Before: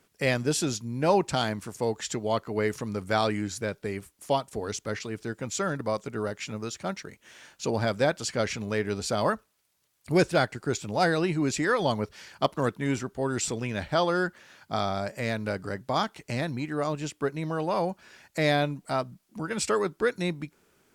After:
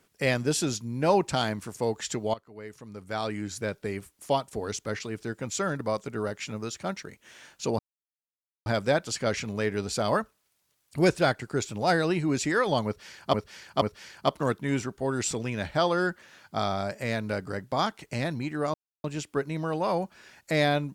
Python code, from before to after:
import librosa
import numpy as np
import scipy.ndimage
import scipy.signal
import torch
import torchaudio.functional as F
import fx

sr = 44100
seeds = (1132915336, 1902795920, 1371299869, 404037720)

y = fx.edit(x, sr, fx.fade_in_from(start_s=2.34, length_s=1.34, curve='qua', floor_db=-17.5),
    fx.insert_silence(at_s=7.79, length_s=0.87),
    fx.repeat(start_s=11.99, length_s=0.48, count=3),
    fx.insert_silence(at_s=16.91, length_s=0.3), tone=tone)